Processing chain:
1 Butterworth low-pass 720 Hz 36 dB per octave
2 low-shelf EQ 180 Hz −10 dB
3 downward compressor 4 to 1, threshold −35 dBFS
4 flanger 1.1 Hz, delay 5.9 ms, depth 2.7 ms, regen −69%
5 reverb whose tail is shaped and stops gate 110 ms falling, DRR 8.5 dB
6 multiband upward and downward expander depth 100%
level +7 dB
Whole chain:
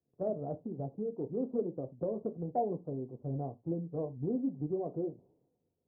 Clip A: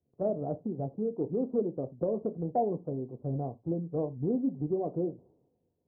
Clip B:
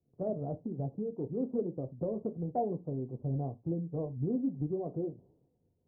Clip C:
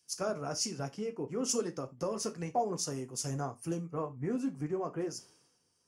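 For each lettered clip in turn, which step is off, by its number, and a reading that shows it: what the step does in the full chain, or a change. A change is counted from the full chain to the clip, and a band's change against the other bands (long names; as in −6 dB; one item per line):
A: 4, change in integrated loudness +4.0 LU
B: 2, 125 Hz band +4.5 dB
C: 1, 1 kHz band +3.5 dB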